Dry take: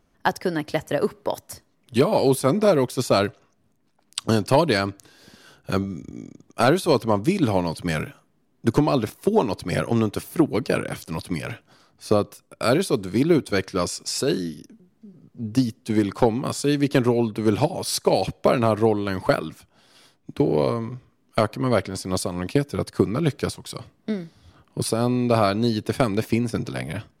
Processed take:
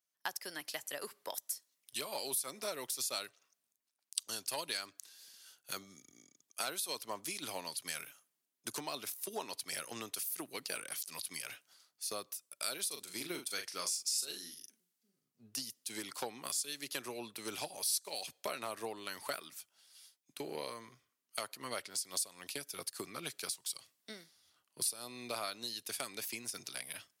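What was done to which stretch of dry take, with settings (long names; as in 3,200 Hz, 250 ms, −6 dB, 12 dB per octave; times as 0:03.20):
0:12.87–0:15.43: double-tracking delay 40 ms −7 dB
whole clip: first difference; downward compressor 3 to 1, threshold −43 dBFS; multiband upward and downward expander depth 40%; level +4.5 dB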